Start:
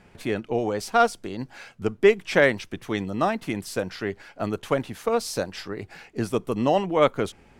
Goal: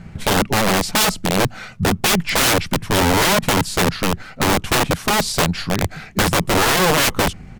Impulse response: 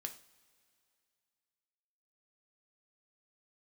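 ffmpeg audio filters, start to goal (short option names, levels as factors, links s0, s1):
-af "lowshelf=f=280:t=q:w=1.5:g=9.5,aeval=exprs='(mod(9.44*val(0)+1,2)-1)/9.44':c=same,asetrate=40440,aresample=44100,atempo=1.09051,volume=2.82"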